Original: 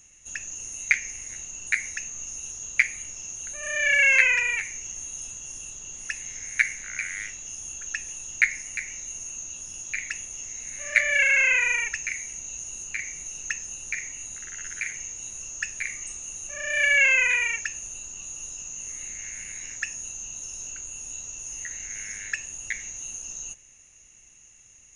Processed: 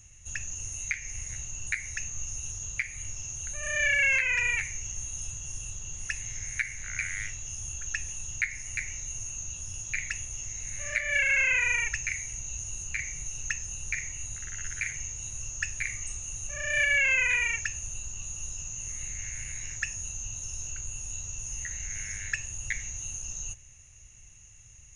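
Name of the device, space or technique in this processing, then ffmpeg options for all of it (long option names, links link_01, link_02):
car stereo with a boomy subwoofer: -af "lowshelf=frequency=160:width_type=q:width=1.5:gain=12.5,alimiter=limit=-13.5dB:level=0:latency=1:release=264,volume=-1.5dB"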